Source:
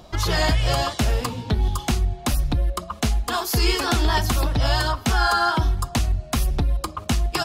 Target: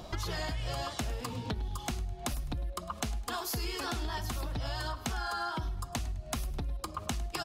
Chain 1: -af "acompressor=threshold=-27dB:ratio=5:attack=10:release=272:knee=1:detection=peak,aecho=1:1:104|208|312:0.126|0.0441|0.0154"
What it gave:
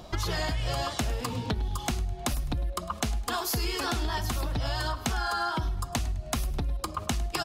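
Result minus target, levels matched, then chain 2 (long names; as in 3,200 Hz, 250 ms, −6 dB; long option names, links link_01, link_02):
downward compressor: peak gain reduction −5.5 dB
-af "acompressor=threshold=-34dB:ratio=5:attack=10:release=272:knee=1:detection=peak,aecho=1:1:104|208|312:0.126|0.0441|0.0154"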